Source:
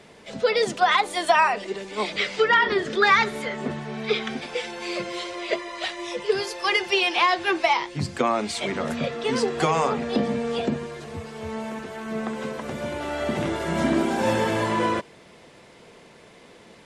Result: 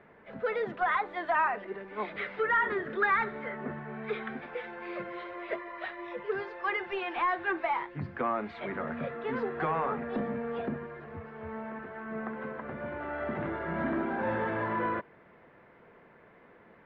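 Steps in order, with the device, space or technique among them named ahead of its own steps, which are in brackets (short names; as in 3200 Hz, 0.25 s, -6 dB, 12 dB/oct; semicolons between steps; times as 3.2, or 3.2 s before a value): dynamic EQ 3800 Hz, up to +6 dB, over -45 dBFS, Q 4.4; overdriven synthesiser ladder filter (soft clip -15 dBFS, distortion -15 dB; ladder low-pass 2000 Hz, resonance 40%)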